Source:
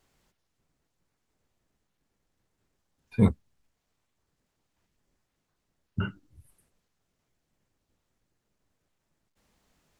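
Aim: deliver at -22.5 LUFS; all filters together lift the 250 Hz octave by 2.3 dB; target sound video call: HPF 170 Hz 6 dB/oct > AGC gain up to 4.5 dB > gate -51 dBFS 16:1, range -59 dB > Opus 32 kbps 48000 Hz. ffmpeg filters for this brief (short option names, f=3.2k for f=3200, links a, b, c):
-af "highpass=f=170:p=1,equalizer=f=250:t=o:g=6,dynaudnorm=m=4.5dB,agate=range=-59dB:threshold=-51dB:ratio=16,volume=5dB" -ar 48000 -c:a libopus -b:a 32k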